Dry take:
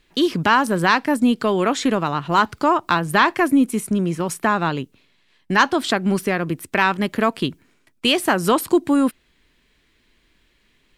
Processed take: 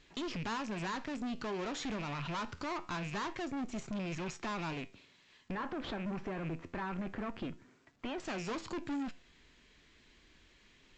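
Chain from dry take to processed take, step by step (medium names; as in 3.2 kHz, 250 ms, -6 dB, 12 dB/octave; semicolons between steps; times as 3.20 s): rattle on loud lows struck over -30 dBFS, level -24 dBFS; valve stage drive 24 dB, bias 0.7; 5.51–8.20 s: low-pass 1.8 kHz 12 dB/octave; peak limiter -31 dBFS, peak gain reduction 11 dB; flange 0.25 Hz, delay 6.8 ms, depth 7.6 ms, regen +79%; compression 3:1, threshold -43 dBFS, peak gain reduction 6.5 dB; trim +6 dB; A-law 128 kbps 16 kHz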